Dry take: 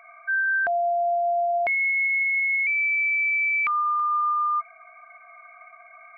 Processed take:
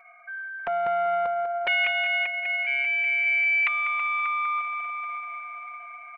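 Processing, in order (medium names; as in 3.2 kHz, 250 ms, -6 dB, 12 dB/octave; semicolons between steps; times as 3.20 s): comb 5.5 ms, depth 91%; multi-head delay 196 ms, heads first and third, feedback 62%, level -10 dB; loudspeaker Doppler distortion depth 0.35 ms; trim -5.5 dB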